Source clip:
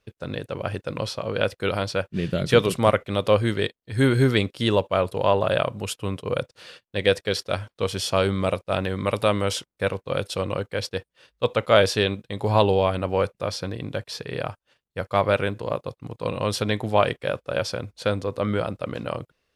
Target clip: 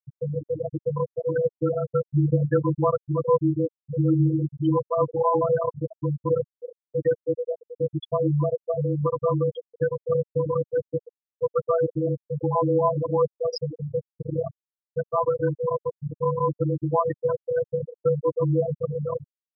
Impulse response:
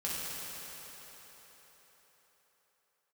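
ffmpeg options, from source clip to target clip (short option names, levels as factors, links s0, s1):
-filter_complex "[0:a]asettb=1/sr,asplit=3[s0][s1][s2];[s0]atrim=end=13.354[s3];[s1]atrim=start=13.35:end=13.96,asetpts=PTS-STARTPTS,afade=t=in:d=0.004:c=qsin,afade=t=out:st=0.606:d=0.004:c=qsin,bass=f=250:g=-2,treble=f=4000:g=8[s4];[s2]atrim=start=13.956[s5];[s3][s4]acrossfade=d=0.004:c1=hsin:c2=qsin[s6];[s6][s5]acrossfade=d=0.004:c1=qsin:c2=hsin,asplit=2[s7][s8];[s8]adelay=315,lowpass=f=4400:p=1,volume=0.168,asplit=2[s9][s10];[s10]adelay=315,lowpass=f=4400:p=1,volume=0.45,asplit=2[s11][s12];[s12]adelay=315,lowpass=f=4400:p=1,volume=0.45,asplit=2[s13][s14];[s14]adelay=315,lowpass=f=4400:p=1,volume=0.45[s15];[s7][s9][s11][s13][s15]amix=inputs=5:normalize=0,adynamicequalizer=threshold=0.00631:dfrequency=1000:dqfactor=6.8:tfrequency=1000:tqfactor=6.8:attack=5:release=100:ratio=0.375:range=3.5:mode=boostabove:tftype=bell,asplit=2[s16][s17];[s17]acompressor=threshold=0.0251:ratio=5,volume=1.33[s18];[s16][s18]amix=inputs=2:normalize=0,alimiter=limit=0.316:level=0:latency=1:release=18,acrusher=bits=5:mix=0:aa=0.000001,afftfilt=real='hypot(re,im)*cos(PI*b)':imag='0':win_size=1024:overlap=0.75,adynamicsmooth=sensitivity=5:basefreq=3000,afreqshift=-26,afftfilt=real='re*gte(hypot(re,im),0.2)':imag='im*gte(hypot(re,im),0.2)':win_size=1024:overlap=0.75,volume=1.58"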